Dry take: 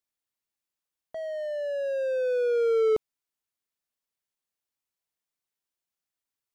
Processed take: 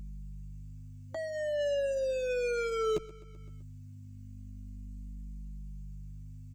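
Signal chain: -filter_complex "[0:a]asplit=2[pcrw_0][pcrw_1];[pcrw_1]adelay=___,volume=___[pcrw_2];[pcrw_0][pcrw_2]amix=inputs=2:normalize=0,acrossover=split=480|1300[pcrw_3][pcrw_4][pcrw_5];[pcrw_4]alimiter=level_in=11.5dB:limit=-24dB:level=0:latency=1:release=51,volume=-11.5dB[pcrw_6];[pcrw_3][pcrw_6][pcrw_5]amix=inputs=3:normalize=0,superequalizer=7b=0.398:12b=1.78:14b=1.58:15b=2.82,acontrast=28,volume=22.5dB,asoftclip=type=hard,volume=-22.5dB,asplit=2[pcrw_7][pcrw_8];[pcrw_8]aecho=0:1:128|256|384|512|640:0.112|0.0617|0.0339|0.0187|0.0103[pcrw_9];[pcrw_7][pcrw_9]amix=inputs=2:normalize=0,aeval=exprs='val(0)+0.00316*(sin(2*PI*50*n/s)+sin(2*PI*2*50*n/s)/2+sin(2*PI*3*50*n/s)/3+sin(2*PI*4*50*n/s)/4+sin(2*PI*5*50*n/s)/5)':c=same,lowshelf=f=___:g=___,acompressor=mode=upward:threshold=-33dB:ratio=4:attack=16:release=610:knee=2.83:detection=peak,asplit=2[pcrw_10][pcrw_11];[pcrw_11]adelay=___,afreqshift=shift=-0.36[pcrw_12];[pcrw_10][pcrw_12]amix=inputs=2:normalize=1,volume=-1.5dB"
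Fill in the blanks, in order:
12, -6.5dB, 400, 4.5, 2.5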